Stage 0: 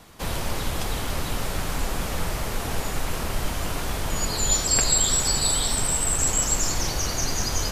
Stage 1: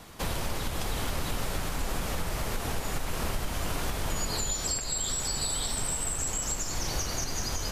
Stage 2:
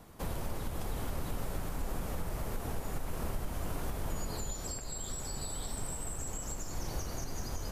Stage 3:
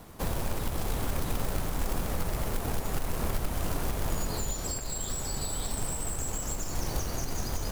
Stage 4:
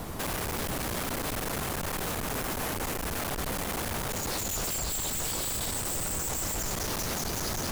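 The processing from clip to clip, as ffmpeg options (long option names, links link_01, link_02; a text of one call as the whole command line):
ffmpeg -i in.wav -af "acompressor=threshold=-23dB:ratio=6,alimiter=limit=-21dB:level=0:latency=1:release=473,volume=1dB" out.wav
ffmpeg -i in.wav -af "equalizer=frequency=3800:width=0.38:gain=-10,volume=-4dB" out.wav
ffmpeg -i in.wav -af "acrusher=bits=3:mode=log:mix=0:aa=0.000001,volume=5.5dB" out.wav
ffmpeg -i in.wav -af "aeval=exprs='0.1*sin(PI/2*6.31*val(0)/0.1)':channel_layout=same,volume=-8dB" out.wav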